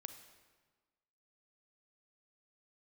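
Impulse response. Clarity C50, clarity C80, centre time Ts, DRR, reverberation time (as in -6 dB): 9.0 dB, 10.5 dB, 19 ms, 8.0 dB, 1.4 s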